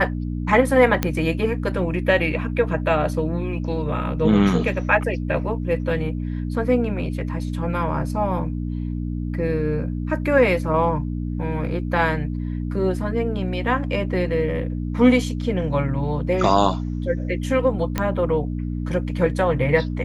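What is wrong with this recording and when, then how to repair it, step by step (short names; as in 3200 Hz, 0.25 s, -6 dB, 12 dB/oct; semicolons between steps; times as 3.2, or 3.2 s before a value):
hum 60 Hz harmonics 5 -26 dBFS
1.03 pop -5 dBFS
17.98 pop -8 dBFS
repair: de-click; de-hum 60 Hz, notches 5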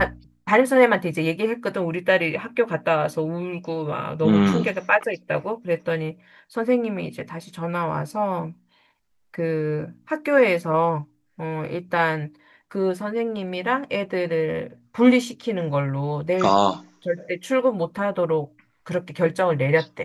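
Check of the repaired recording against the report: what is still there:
none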